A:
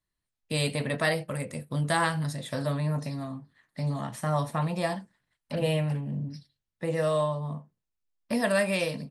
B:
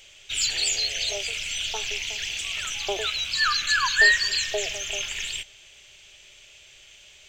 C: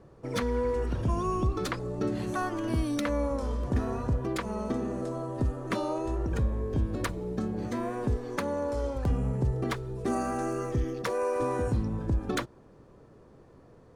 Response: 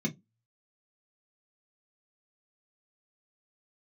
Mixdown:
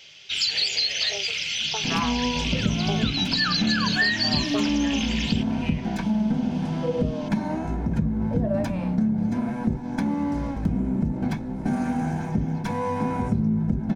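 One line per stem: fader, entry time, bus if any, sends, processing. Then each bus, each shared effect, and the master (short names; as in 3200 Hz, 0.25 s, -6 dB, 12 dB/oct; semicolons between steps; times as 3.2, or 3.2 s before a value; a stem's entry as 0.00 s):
+2.5 dB, 0.00 s, no send, harmonic-percussive split harmonic +5 dB; wah 0.23 Hz 290–2500 Hz, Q 4.4
+2.0 dB, 0.00 s, send -15 dB, HPF 110 Hz; resonant high shelf 6400 Hz -8.5 dB, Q 3
+0.5 dB, 1.60 s, send -3.5 dB, minimum comb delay 1.2 ms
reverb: on, RT60 0.15 s, pre-delay 3 ms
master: compressor 3:1, threshold -21 dBFS, peak gain reduction 8.5 dB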